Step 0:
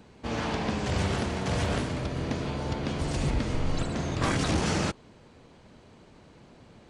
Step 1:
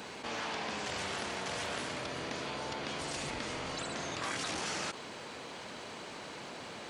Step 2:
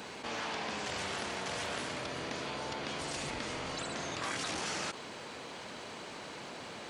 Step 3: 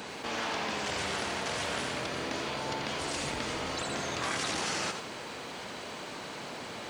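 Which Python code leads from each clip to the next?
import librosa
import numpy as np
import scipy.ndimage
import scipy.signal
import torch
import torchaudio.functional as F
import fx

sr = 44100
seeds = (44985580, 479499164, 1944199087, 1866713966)

y1 = fx.highpass(x, sr, hz=1000.0, slope=6)
y1 = fx.env_flatten(y1, sr, amount_pct=70)
y1 = F.gain(torch.from_numpy(y1), -6.0).numpy()
y2 = y1
y3 = fx.echo_crushed(y2, sr, ms=87, feedback_pct=35, bits=10, wet_db=-7.5)
y3 = F.gain(torch.from_numpy(y3), 3.5).numpy()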